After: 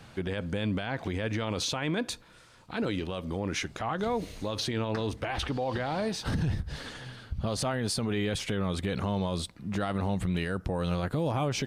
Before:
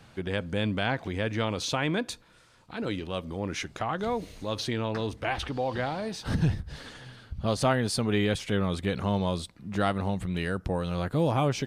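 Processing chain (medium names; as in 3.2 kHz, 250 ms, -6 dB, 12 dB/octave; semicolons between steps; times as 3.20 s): peak limiter -24.5 dBFS, peak gain reduction 11.5 dB; trim +3 dB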